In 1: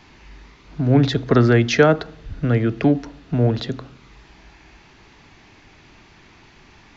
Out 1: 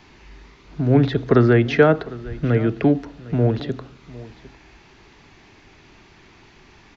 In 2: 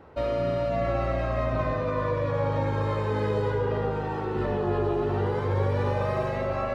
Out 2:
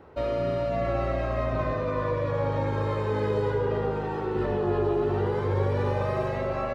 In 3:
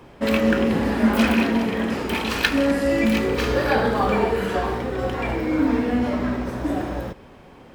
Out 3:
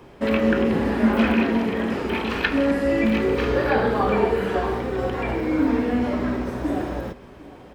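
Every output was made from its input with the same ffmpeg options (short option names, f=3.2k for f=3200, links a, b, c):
-filter_complex "[0:a]acrossover=split=3400[a][b];[b]acompressor=threshold=-47dB:ratio=4:attack=1:release=60[c];[a][c]amix=inputs=2:normalize=0,equalizer=f=390:t=o:w=0.34:g=4,asplit=2[d][e];[e]aecho=0:1:754:0.106[f];[d][f]amix=inputs=2:normalize=0,volume=-1dB"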